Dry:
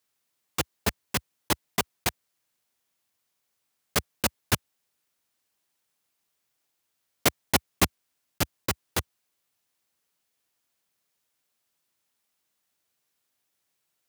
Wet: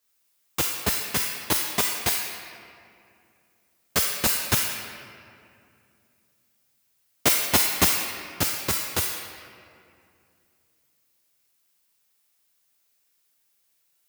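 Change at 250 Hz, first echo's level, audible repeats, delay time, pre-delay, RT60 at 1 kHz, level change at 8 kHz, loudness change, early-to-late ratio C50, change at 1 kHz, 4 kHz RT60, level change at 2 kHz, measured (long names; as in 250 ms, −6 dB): +0.5 dB, no echo audible, no echo audible, no echo audible, 3 ms, 2.3 s, +7.0 dB, +5.5 dB, 2.0 dB, +1.5 dB, 1.4 s, +4.0 dB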